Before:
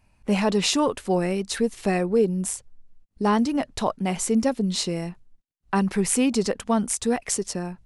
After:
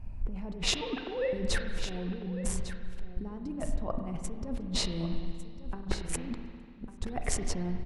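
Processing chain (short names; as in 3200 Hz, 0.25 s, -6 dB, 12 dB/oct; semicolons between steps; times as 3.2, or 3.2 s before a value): 0.81–1.33 sine-wave speech; tilt -4 dB/oct; negative-ratio compressor -29 dBFS, ratio -1; 6.33–7.01 flipped gate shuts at -25 dBFS, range -34 dB; echo 1.151 s -12.5 dB; spring tank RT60 2.1 s, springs 33/48 ms, chirp 65 ms, DRR 5.5 dB; gain -5.5 dB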